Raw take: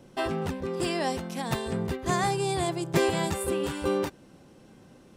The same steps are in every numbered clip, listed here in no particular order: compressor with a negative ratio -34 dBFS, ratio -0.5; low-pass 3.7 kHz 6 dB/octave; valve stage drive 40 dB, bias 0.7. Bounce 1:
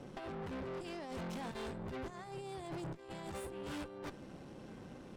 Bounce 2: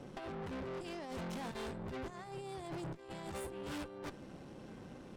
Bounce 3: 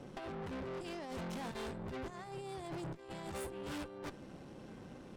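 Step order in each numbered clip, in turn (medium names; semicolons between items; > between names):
compressor with a negative ratio > valve stage > low-pass; compressor with a negative ratio > low-pass > valve stage; low-pass > compressor with a negative ratio > valve stage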